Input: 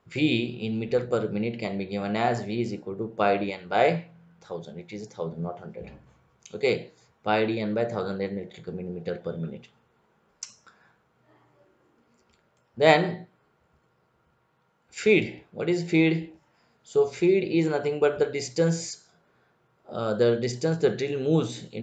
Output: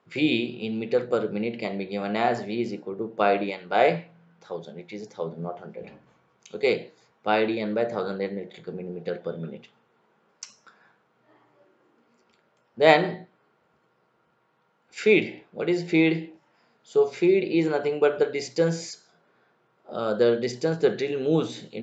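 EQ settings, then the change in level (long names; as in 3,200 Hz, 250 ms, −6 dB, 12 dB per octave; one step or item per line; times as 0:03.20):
band-pass filter 190–5,600 Hz
+1.5 dB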